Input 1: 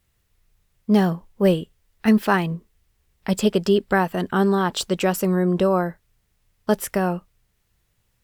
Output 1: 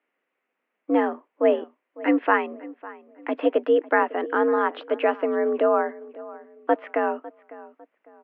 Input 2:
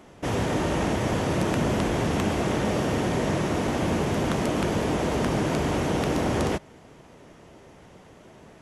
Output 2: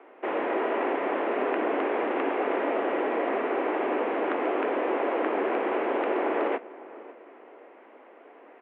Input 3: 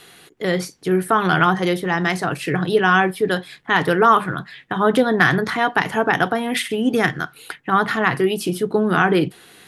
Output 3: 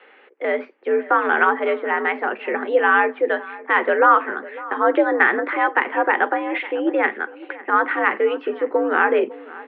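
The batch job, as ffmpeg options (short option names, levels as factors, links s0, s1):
-filter_complex "[0:a]highpass=f=240:t=q:w=0.5412,highpass=f=240:t=q:w=1.307,lowpass=f=2500:t=q:w=0.5176,lowpass=f=2500:t=q:w=0.7071,lowpass=f=2500:t=q:w=1.932,afreqshift=72,asplit=2[s0][s1];[s1]adelay=552,lowpass=f=1900:p=1,volume=0.126,asplit=2[s2][s3];[s3]adelay=552,lowpass=f=1900:p=1,volume=0.35,asplit=2[s4][s5];[s5]adelay=552,lowpass=f=1900:p=1,volume=0.35[s6];[s0][s2][s4][s6]amix=inputs=4:normalize=0"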